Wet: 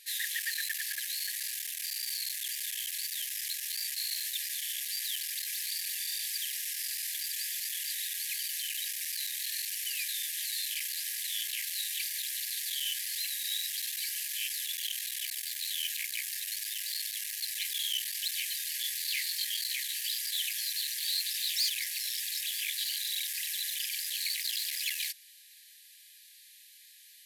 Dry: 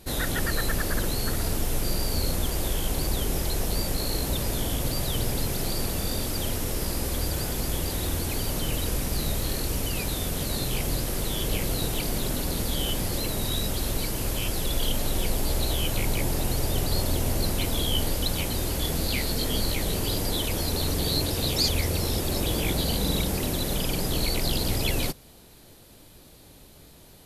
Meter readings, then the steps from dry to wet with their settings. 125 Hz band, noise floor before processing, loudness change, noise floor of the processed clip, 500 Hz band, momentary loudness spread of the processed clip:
under -40 dB, -51 dBFS, -4.5 dB, -56 dBFS, under -40 dB, 3 LU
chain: hard clipper -25 dBFS, distortion -11 dB; brick-wall FIR high-pass 1.6 kHz

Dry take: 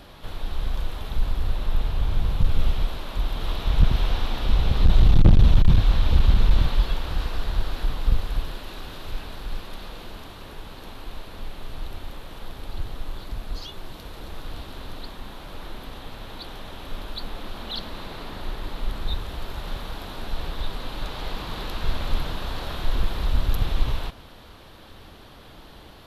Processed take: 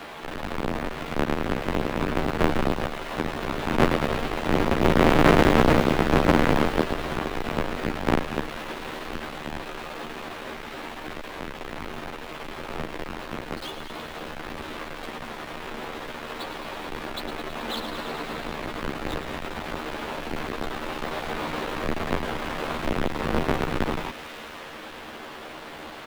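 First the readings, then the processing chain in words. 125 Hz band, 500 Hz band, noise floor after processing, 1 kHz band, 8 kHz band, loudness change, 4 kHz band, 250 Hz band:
-5.5 dB, +12.0 dB, -39 dBFS, +9.5 dB, no reading, -0.5 dB, +0.5 dB, +8.0 dB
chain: square wave that keeps the level; three-band isolator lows -18 dB, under 200 Hz, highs -15 dB, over 3.2 kHz; doubling 13 ms -3 dB; feedback echo behind a high-pass 107 ms, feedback 79%, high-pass 2 kHz, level -10 dB; tape noise reduction on one side only encoder only; trim +1.5 dB

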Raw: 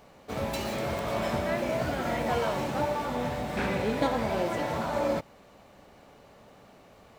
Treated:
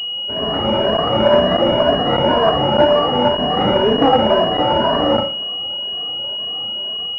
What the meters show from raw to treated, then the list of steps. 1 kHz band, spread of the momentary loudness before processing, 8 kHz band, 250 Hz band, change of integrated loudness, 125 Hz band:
+14.5 dB, 4 LU, under -10 dB, +13.0 dB, +14.0 dB, +10.0 dB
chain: drifting ripple filter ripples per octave 1.5, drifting +2 Hz, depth 22 dB; bass shelf 340 Hz -10 dB; Schroeder reverb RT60 0.56 s, combs from 29 ms, DRR 7.5 dB; in parallel at -5.5 dB: decimation with a swept rate 25×, swing 100% 3.6 Hz; on the sum: level rider gain up to 8.5 dB; high-pass 61 Hz; crackling interface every 0.60 s, samples 512, zero, from 0.97 s; class-D stage that switches slowly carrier 2.9 kHz; trim +3 dB

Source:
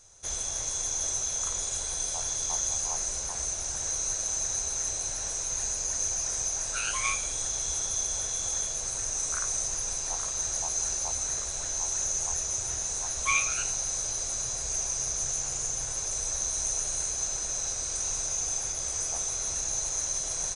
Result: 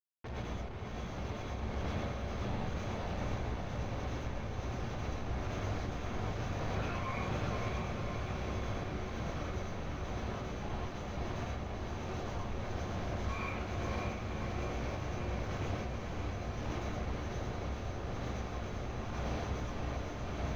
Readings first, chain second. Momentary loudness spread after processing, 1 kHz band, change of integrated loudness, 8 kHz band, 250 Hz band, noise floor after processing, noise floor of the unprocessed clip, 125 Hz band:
4 LU, -0.5 dB, -11.0 dB, -32.5 dB, +13.0 dB, -41 dBFS, -34 dBFS, +9.5 dB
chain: high-pass 61 Hz 24 dB/octave; treble shelf 6.6 kHz -8 dB; de-hum 79.98 Hz, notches 29; peak limiter -27 dBFS, peak gain reduction 11 dB; phase shifter stages 8, 1.1 Hz, lowest notch 170–2700 Hz; Schmitt trigger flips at -38 dBFS; random-step tremolo; distance through air 280 m; on a send: echo that smears into a reverb 553 ms, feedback 67%, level -4 dB; on the sum: gated-style reverb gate 150 ms rising, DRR -4 dB

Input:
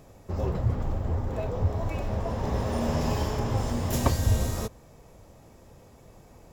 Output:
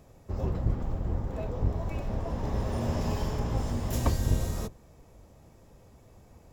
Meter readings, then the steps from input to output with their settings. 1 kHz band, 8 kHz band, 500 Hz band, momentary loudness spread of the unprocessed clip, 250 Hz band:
-5.0 dB, -5.0 dB, -4.5 dB, 6 LU, -3.0 dB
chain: octave divider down 1 oct, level +1 dB; trim -5 dB

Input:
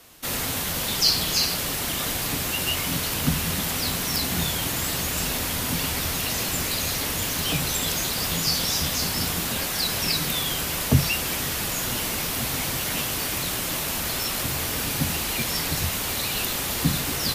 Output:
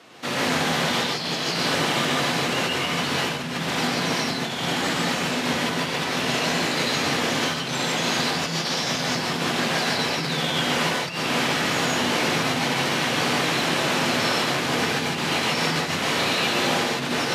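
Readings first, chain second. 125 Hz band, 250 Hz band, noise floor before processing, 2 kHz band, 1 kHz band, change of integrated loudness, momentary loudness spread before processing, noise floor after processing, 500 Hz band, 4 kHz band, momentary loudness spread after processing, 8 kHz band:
-1.5 dB, +5.0 dB, -28 dBFS, +6.5 dB, +8.0 dB, +1.0 dB, 4 LU, -28 dBFS, +8.0 dB, +2.0 dB, 3 LU, -5.0 dB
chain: Bessel low-pass 3.3 kHz, order 2; compressor with a negative ratio -31 dBFS, ratio -0.5; high-pass 140 Hz 24 dB/octave; gated-style reverb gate 180 ms rising, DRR -3.5 dB; trim +3 dB

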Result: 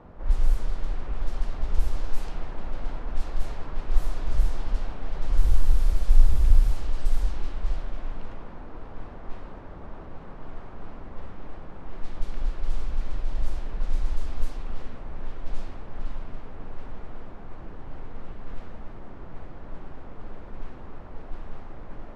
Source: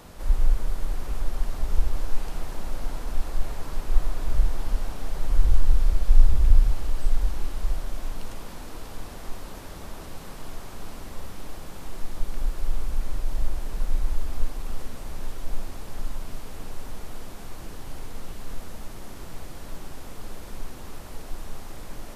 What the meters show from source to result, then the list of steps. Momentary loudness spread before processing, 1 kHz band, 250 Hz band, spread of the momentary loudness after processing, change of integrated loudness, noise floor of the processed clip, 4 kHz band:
16 LU, -1.0 dB, -1.0 dB, 18 LU, 0.0 dB, -41 dBFS, no reading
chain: level-controlled noise filter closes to 1.2 kHz, open at -10.5 dBFS; trim -1 dB

